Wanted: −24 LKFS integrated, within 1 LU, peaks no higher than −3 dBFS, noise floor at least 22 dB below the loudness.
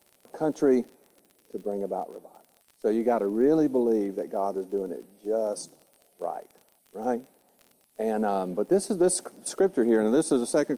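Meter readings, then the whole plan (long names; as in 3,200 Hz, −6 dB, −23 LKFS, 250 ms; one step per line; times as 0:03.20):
crackle rate 35 per second; integrated loudness −27.0 LKFS; sample peak −13.0 dBFS; target loudness −24.0 LKFS
→ click removal
level +3 dB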